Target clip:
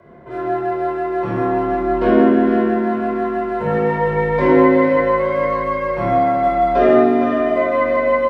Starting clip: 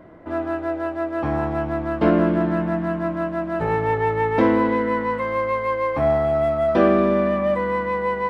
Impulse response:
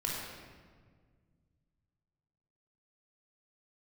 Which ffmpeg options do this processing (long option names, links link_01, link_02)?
-filter_complex "[0:a]aecho=1:1:457|914|1371|1828|2285:0.355|0.153|0.0656|0.0282|0.0121[link_01];[1:a]atrim=start_sample=2205,afade=type=out:start_time=0.25:duration=0.01,atrim=end_sample=11466[link_02];[link_01][link_02]afir=irnorm=-1:irlink=0,afreqshift=44,volume=-2dB"